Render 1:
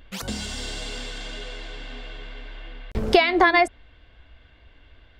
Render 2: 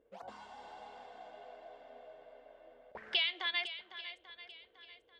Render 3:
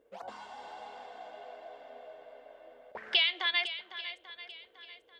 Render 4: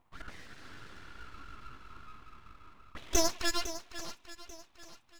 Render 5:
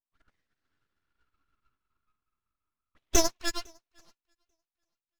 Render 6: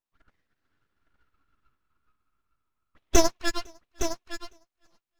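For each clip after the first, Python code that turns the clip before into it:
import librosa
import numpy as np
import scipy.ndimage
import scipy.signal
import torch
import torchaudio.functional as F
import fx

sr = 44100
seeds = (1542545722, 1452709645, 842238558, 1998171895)

y1 = fx.auto_wah(x, sr, base_hz=430.0, top_hz=3200.0, q=6.6, full_db=-18.5, direction='up')
y1 = fx.echo_swing(y1, sr, ms=840, ratio=1.5, feedback_pct=30, wet_db=-12.5)
y2 = fx.low_shelf(y1, sr, hz=180.0, db=-9.5)
y2 = y2 * 10.0 ** (5.5 / 20.0)
y3 = y2 + 0.74 * np.pad(y2, (int(3.0 * sr / 1000.0), 0))[:len(y2)]
y3 = np.abs(y3)
y3 = y3 * 10.0 ** (-1.5 / 20.0)
y4 = fx.upward_expand(y3, sr, threshold_db=-49.0, expansion=2.5)
y4 = y4 * 10.0 ** (6.5 / 20.0)
y5 = fx.high_shelf(y4, sr, hz=3600.0, db=-7.5)
y5 = y5 + 10.0 ** (-9.5 / 20.0) * np.pad(y5, (int(862 * sr / 1000.0), 0))[:len(y5)]
y5 = y5 * 10.0 ** (5.5 / 20.0)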